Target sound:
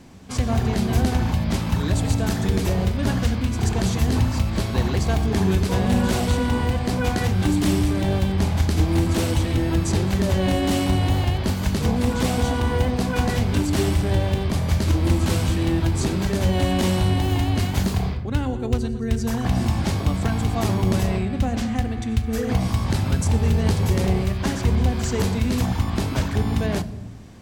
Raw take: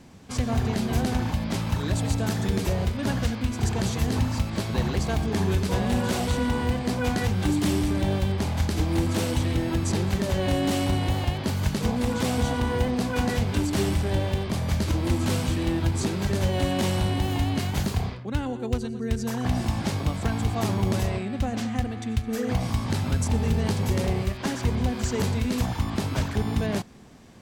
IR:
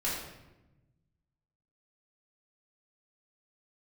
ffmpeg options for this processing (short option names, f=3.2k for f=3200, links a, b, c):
-filter_complex "[0:a]asplit=2[a][b];[1:a]atrim=start_sample=2205,lowshelf=f=330:g=10,highshelf=f=12k:g=11.5[c];[b][c]afir=irnorm=-1:irlink=0,volume=-20dB[d];[a][d]amix=inputs=2:normalize=0,volume=2dB"